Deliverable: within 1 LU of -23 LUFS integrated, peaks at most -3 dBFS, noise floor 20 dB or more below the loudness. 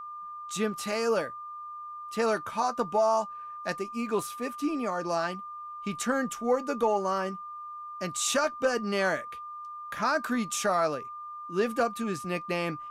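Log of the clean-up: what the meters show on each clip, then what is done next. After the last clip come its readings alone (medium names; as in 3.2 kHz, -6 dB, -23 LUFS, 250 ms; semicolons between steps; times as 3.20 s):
steady tone 1.2 kHz; tone level -38 dBFS; loudness -29.5 LUFS; peak level -16.0 dBFS; loudness target -23.0 LUFS
-> band-stop 1.2 kHz, Q 30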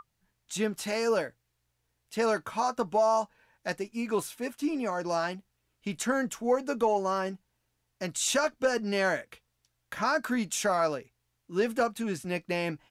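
steady tone not found; loudness -30.0 LUFS; peak level -15.5 dBFS; loudness target -23.0 LUFS
-> trim +7 dB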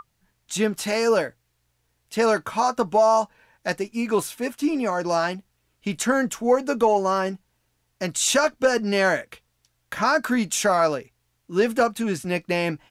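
loudness -23.0 LUFS; peak level -8.5 dBFS; noise floor -71 dBFS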